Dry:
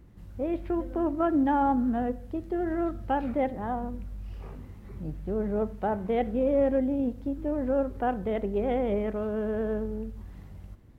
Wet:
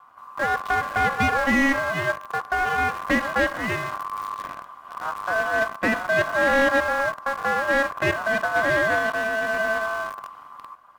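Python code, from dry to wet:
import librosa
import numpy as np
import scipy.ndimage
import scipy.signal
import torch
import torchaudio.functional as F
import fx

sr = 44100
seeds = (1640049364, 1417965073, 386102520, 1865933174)

p1 = fx.lower_of_two(x, sr, delay_ms=2.2)
p2 = fx.quant_dither(p1, sr, seeds[0], bits=6, dither='none')
p3 = p1 + F.gain(torch.from_numpy(p2), -5.0).numpy()
p4 = p3 * np.sin(2.0 * np.pi * 1100.0 * np.arange(len(p3)) / sr)
p5 = fx.slew_limit(p4, sr, full_power_hz=97.0)
y = F.gain(torch.from_numpy(p5), 5.5).numpy()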